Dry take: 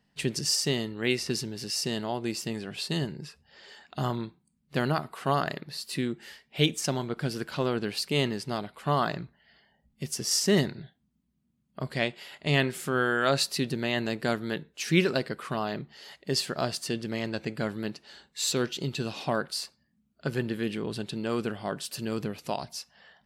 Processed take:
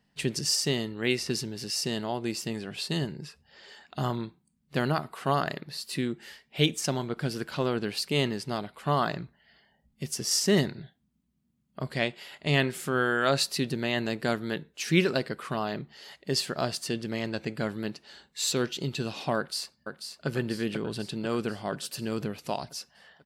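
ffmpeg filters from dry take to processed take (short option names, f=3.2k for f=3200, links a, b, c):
-filter_complex "[0:a]asplit=2[a][b];[b]afade=t=in:st=19.37:d=0.01,afade=t=out:st=20.28:d=0.01,aecho=0:1:490|980|1470|1960|2450|2940|3430|3920:0.446684|0.26801|0.160806|0.0964837|0.0578902|0.0347341|0.0208405|0.0125043[c];[a][c]amix=inputs=2:normalize=0"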